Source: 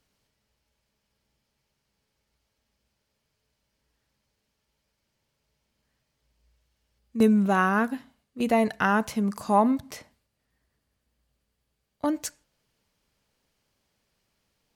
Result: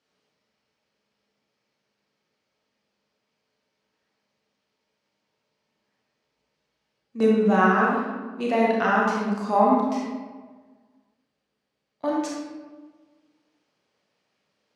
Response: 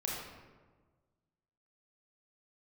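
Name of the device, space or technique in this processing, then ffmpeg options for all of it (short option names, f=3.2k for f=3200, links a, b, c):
supermarket ceiling speaker: -filter_complex "[0:a]highpass=230,lowpass=5.5k[a];[1:a]atrim=start_sample=2205[b];[a][b]afir=irnorm=-1:irlink=0"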